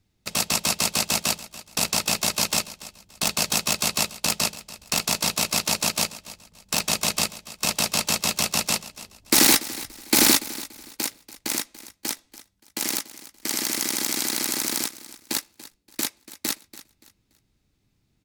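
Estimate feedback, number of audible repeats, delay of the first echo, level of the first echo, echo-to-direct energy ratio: 29%, 2, 287 ms, −17.0 dB, −16.5 dB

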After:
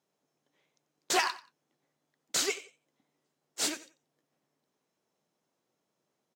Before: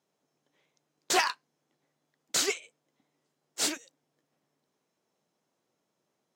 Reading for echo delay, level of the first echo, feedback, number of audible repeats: 90 ms, −17.0 dB, 23%, 2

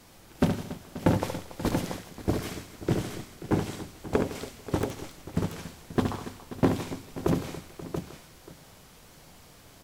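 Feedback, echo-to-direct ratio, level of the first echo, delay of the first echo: repeats not evenly spaced, −2.5 dB, −6.5 dB, 70 ms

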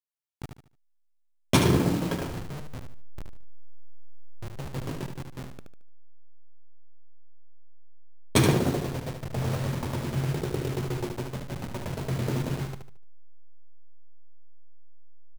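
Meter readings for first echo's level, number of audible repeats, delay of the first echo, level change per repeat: −6.5 dB, 3, 74 ms, −9.5 dB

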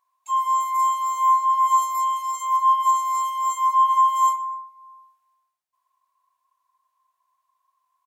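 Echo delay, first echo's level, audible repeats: 126 ms, −21.0 dB, 2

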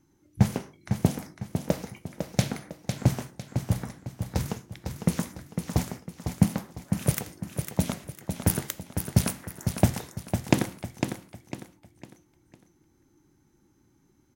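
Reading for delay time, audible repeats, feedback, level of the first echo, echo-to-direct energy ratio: 503 ms, 4, 35%, −7.0 dB, −6.5 dB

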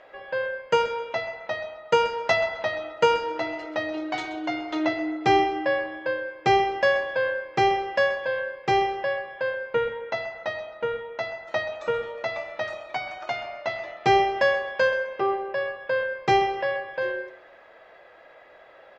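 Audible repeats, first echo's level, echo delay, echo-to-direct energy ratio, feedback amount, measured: 2, −15.0 dB, 130 ms, −14.5 dB, 26%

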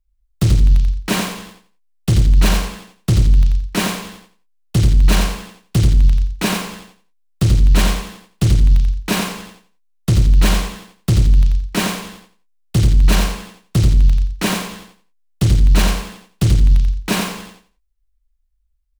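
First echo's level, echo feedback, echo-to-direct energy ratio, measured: −5.5 dB, 23%, −5.5 dB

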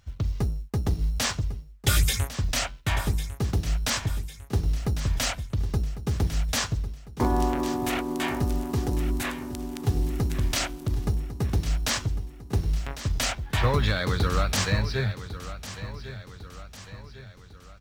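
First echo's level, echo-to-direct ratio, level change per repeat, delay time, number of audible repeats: −13.0 dB, −12.0 dB, −6.0 dB, 1,101 ms, 4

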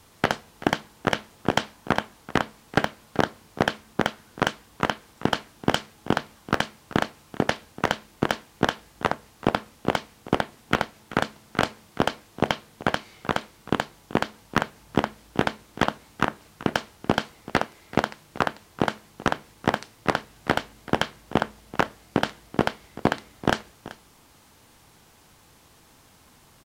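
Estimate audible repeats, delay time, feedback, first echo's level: 1, 383 ms, repeats not evenly spaced, −18.0 dB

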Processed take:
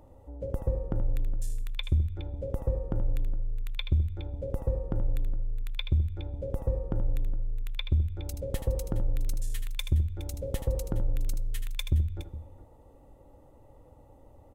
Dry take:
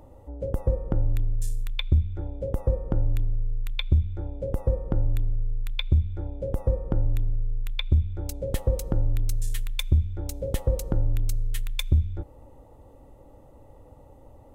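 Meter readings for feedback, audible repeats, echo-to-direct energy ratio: repeats not evenly spaced, 2, −8.0 dB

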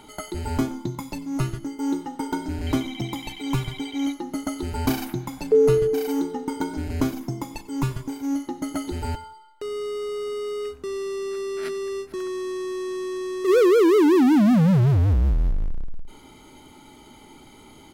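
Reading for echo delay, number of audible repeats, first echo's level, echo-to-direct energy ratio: 94 ms, 2, −21.0 dB, −21.0 dB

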